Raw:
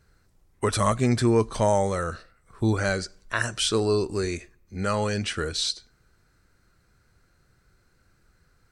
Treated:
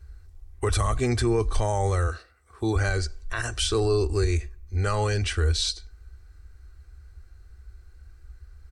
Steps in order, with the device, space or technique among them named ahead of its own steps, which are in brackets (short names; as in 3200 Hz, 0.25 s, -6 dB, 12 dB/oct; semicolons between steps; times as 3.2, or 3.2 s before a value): 2.07–2.76 Bessel high-pass 200 Hz, order 2; car stereo with a boomy subwoofer (resonant low shelf 100 Hz +13.5 dB, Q 3; limiter -16 dBFS, peak gain reduction 7.5 dB); comb 2.6 ms, depth 39%